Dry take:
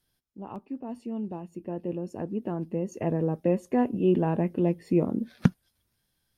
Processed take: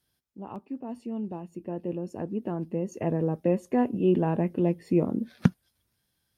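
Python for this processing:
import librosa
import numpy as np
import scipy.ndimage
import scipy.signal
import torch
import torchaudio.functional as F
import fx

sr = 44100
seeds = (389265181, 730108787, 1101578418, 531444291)

y = scipy.signal.sosfilt(scipy.signal.butter(2, 45.0, 'highpass', fs=sr, output='sos'), x)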